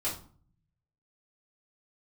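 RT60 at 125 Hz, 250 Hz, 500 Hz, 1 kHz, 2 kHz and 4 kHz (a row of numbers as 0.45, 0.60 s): 1.2, 0.80, 0.45, 0.45, 0.35, 0.30 s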